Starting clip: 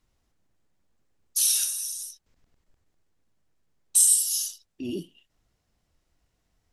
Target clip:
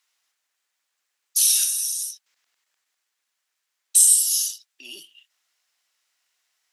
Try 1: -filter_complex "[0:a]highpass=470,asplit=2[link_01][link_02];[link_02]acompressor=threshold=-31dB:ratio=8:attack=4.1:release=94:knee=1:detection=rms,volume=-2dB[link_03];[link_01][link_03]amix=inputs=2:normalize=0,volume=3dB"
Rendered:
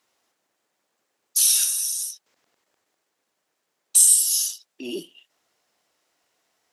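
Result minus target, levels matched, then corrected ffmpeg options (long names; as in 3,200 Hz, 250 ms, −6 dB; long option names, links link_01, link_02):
500 Hz band +19.5 dB
-filter_complex "[0:a]highpass=1600,asplit=2[link_01][link_02];[link_02]acompressor=threshold=-31dB:ratio=8:attack=4.1:release=94:knee=1:detection=rms,volume=-2dB[link_03];[link_01][link_03]amix=inputs=2:normalize=0,volume=3dB"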